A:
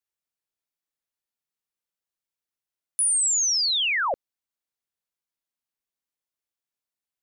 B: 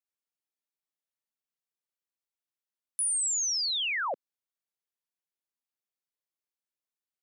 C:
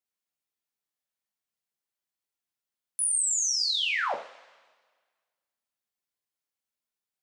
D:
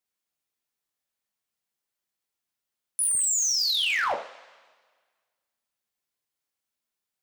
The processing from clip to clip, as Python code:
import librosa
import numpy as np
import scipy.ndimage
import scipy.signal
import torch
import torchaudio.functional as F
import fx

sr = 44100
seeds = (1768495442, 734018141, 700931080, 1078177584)

y1 = scipy.signal.sosfilt(scipy.signal.cheby1(2, 1.0, 220.0, 'highpass', fs=sr, output='sos'), x)
y1 = F.gain(torch.from_numpy(y1), -5.5).numpy()
y2 = fx.rev_double_slope(y1, sr, seeds[0], early_s=0.38, late_s=1.6, knee_db=-19, drr_db=1.5)
y3 = np.clip(10.0 ** (24.5 / 20.0) * y2, -1.0, 1.0) / 10.0 ** (24.5 / 20.0)
y3 = F.gain(torch.from_numpy(y3), 3.5).numpy()